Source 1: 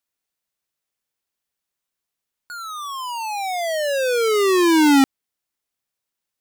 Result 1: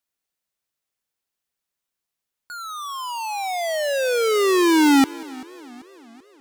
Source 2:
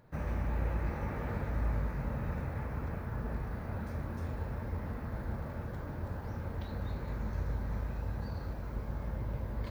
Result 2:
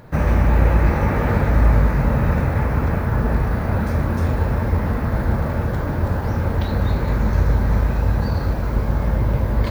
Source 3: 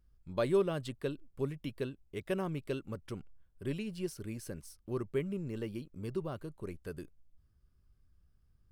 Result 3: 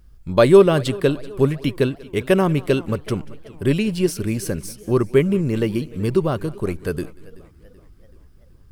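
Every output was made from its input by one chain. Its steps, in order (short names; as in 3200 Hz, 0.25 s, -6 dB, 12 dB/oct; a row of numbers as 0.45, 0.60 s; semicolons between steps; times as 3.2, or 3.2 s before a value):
thinning echo 0.188 s, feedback 43%, high-pass 300 Hz, level -22 dB; warbling echo 0.384 s, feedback 54%, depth 129 cents, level -21.5 dB; match loudness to -20 LUFS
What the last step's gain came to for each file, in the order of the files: -1.0, +18.0, +18.0 dB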